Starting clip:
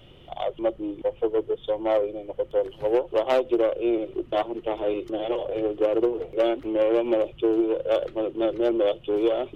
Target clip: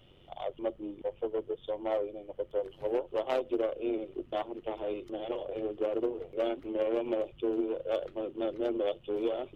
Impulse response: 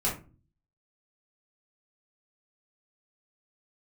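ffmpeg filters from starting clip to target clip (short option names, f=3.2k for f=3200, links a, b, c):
-af "tremolo=f=93:d=0.519,volume=-6.5dB"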